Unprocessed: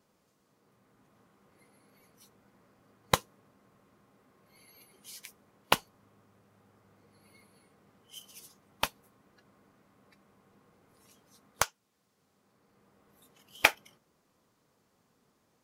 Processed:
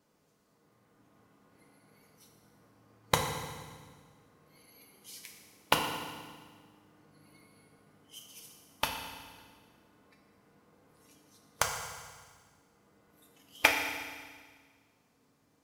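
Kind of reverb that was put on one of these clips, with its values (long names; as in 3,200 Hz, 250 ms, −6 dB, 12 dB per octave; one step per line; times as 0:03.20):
feedback delay network reverb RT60 1.6 s, low-frequency decay 1.35×, high-frequency decay 1×, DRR 1.5 dB
level −2 dB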